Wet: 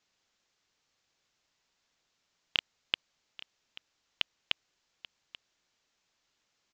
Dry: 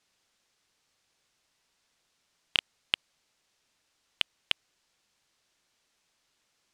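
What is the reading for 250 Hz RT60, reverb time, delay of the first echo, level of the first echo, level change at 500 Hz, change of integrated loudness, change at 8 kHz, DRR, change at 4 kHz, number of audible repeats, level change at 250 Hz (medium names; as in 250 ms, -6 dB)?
no reverb, no reverb, 835 ms, -18.0 dB, -3.0 dB, -3.0 dB, under -10 dB, no reverb, -3.0 dB, 1, -3.0 dB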